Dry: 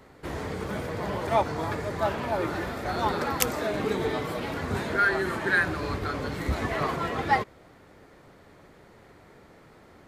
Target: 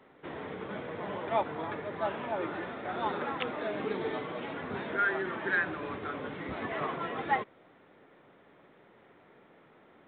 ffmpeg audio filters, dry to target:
ffmpeg -i in.wav -af "highpass=180,volume=-5.5dB" -ar 8000 -c:a pcm_mulaw out.wav

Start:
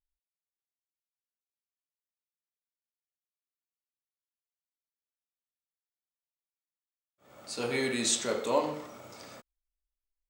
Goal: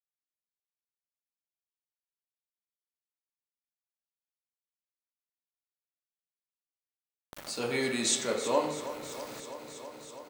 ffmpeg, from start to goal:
ffmpeg -i in.wav -af "highpass=68,aeval=exprs='val(0)*gte(abs(val(0)),0.00422)':channel_layout=same,aecho=1:1:326|652|978|1304|1630|1956:0.224|0.13|0.0753|0.0437|0.0253|0.0147,acompressor=mode=upward:threshold=-34dB:ratio=2.5" out.wav

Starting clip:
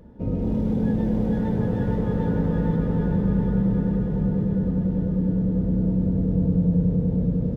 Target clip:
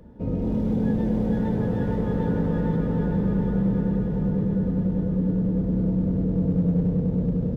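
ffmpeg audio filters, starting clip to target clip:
ffmpeg -i in.wav -filter_complex "[0:a]acrossover=split=160[link_01][link_02];[link_01]asoftclip=type=hard:threshold=-27dB[link_03];[link_03][link_02]amix=inputs=2:normalize=0" out.wav

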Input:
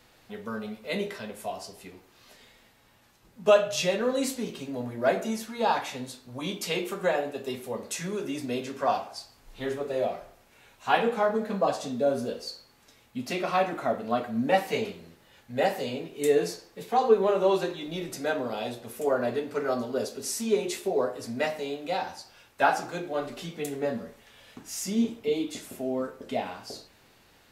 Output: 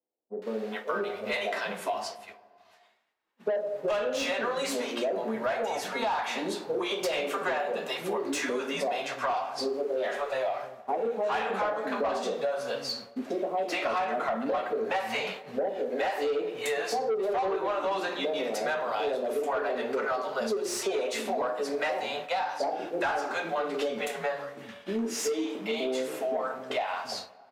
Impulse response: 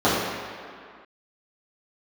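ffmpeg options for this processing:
-filter_complex "[0:a]bandreject=frequency=60:width_type=h:width=6,bandreject=frequency=120:width_type=h:width=6,bandreject=frequency=180:width_type=h:width=6,bandreject=frequency=240:width_type=h:width=6,bandreject=frequency=300:width_type=h:width=6,bandreject=frequency=360:width_type=h:width=6,bandreject=frequency=420:width_type=h:width=6,bandreject=frequency=480:width_type=h:width=6,bandreject=frequency=540:width_type=h:width=6,bandreject=frequency=600:width_type=h:width=6,acrossover=split=170|580[link_01][link_02][link_03];[link_03]adelay=420[link_04];[link_01]adelay=730[link_05];[link_05][link_02][link_04]amix=inputs=3:normalize=0,agate=range=-33dB:threshold=-42dB:ratio=3:detection=peak,asplit=2[link_06][link_07];[link_07]highpass=frequency=720:poles=1,volume=23dB,asoftclip=type=tanh:threshold=-9dB[link_08];[link_06][link_08]amix=inputs=2:normalize=0,lowpass=frequency=1300:poles=1,volume=-6dB,bass=frequency=250:gain=-8,treble=frequency=4000:gain=1,asplit=2[link_09][link_10];[1:a]atrim=start_sample=2205[link_11];[link_10][link_11]afir=irnorm=-1:irlink=0,volume=-40.5dB[link_12];[link_09][link_12]amix=inputs=2:normalize=0,acompressor=threshold=-27dB:ratio=6"

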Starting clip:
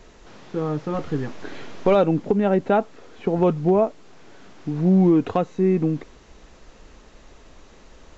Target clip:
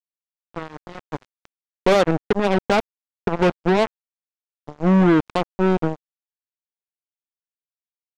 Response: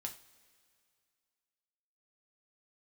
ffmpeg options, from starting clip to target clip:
-af "acrusher=bits=2:mix=0:aa=0.5"

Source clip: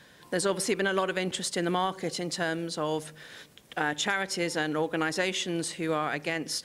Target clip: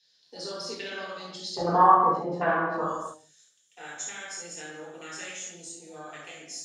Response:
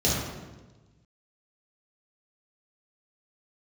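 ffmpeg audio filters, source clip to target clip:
-filter_complex "[0:a]afwtdn=0.0316,asetnsamples=nb_out_samples=441:pad=0,asendcmd='1.57 bandpass f 1100;2.81 bandpass f 7400',bandpass=frequency=4700:width_type=q:width=5.1:csg=0[link_01];[1:a]atrim=start_sample=2205,afade=type=out:start_time=0.38:duration=0.01,atrim=end_sample=17199[link_02];[link_01][link_02]afir=irnorm=-1:irlink=0,volume=6.5dB"

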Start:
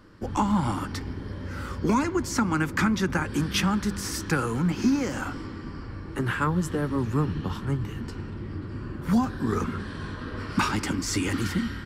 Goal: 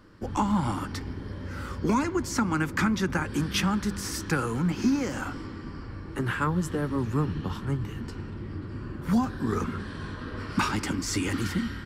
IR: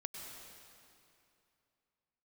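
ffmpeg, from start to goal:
-af "volume=-1.5dB"

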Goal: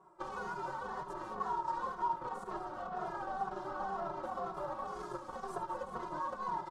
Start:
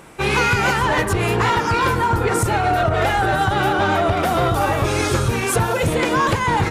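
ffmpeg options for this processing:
ffmpeg -i in.wav -filter_complex "[0:a]bass=frequency=250:gain=-11,treble=frequency=4000:gain=1,aeval=exprs='0.398*(cos(1*acos(clip(val(0)/0.398,-1,1)))-cos(1*PI/2))+0.126*(cos(3*acos(clip(val(0)/0.398,-1,1)))-cos(3*PI/2))+0.01*(cos(7*acos(clip(val(0)/0.398,-1,1)))-cos(7*PI/2))':channel_layout=same,aecho=1:1:5.4:0.89,asoftclip=type=hard:threshold=-20.5dB,lowpass=7800,asplit=2[link_01][link_02];[link_02]aecho=0:1:215:0.251[link_03];[link_01][link_03]amix=inputs=2:normalize=0,acompressor=threshold=-33dB:ratio=10,highshelf=frequency=1600:width_type=q:width=3:gain=-13,asplit=2[link_04][link_05];[link_05]aecho=0:1:72:0.237[link_06];[link_04][link_06]amix=inputs=2:normalize=0,asplit=2[link_07][link_08];[link_08]adelay=2.4,afreqshift=-2[link_09];[link_07][link_09]amix=inputs=2:normalize=1,volume=-1.5dB" out.wav

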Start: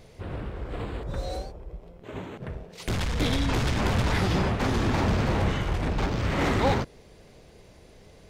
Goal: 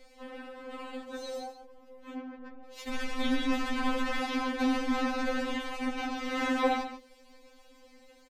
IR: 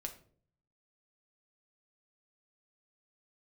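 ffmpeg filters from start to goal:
-filter_complex "[0:a]lowshelf=frequency=370:gain=-9,acrossover=split=270|440|3100[link_01][link_02][link_03][link_04];[link_01]acontrast=55[link_05];[link_04]alimiter=level_in=11dB:limit=-24dB:level=0:latency=1:release=334,volume=-11dB[link_06];[link_05][link_02][link_03][link_06]amix=inputs=4:normalize=0,aecho=1:1:141:0.282,asplit=3[link_07][link_08][link_09];[link_07]afade=type=out:start_time=2.14:duration=0.02[link_10];[link_08]adynamicsmooth=sensitivity=4:basefreq=950,afade=type=in:start_time=2.14:duration=0.02,afade=type=out:start_time=2.63:duration=0.02[link_11];[link_09]afade=type=in:start_time=2.63:duration=0.02[link_12];[link_10][link_11][link_12]amix=inputs=3:normalize=0,afftfilt=real='re*3.46*eq(mod(b,12),0)':imag='im*3.46*eq(mod(b,12),0)':win_size=2048:overlap=0.75"

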